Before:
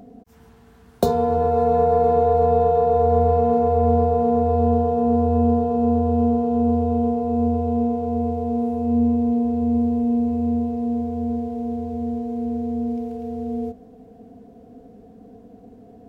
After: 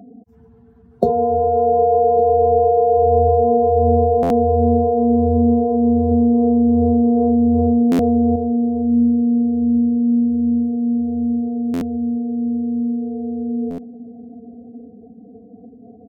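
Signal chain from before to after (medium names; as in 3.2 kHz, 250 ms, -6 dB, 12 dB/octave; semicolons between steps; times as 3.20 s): spectral contrast enhancement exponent 1.8; high-pass 68 Hz 24 dB/octave; feedback delay 1157 ms, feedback 37%, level -18 dB; buffer glitch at 4.22/7.91/11.73/13.70 s, samples 512, times 6; 6.11–8.36 s: level flattener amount 70%; trim +3 dB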